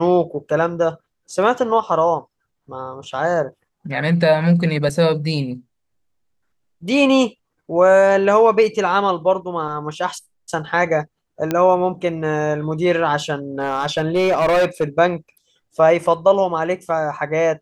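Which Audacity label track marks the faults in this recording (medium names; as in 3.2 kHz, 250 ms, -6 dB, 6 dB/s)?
4.890000	4.890000	dropout 4.6 ms
11.510000	11.510000	pop -7 dBFS
13.600000	14.840000	clipped -12.5 dBFS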